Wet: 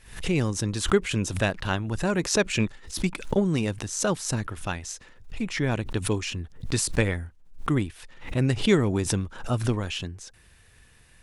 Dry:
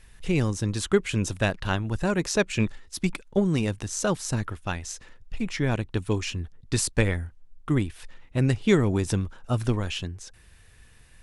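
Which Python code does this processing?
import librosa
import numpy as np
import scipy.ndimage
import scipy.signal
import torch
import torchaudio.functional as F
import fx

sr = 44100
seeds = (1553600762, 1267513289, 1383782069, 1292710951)

y = fx.low_shelf(x, sr, hz=63.0, db=-6.5)
y = fx.pre_swell(y, sr, db_per_s=110.0)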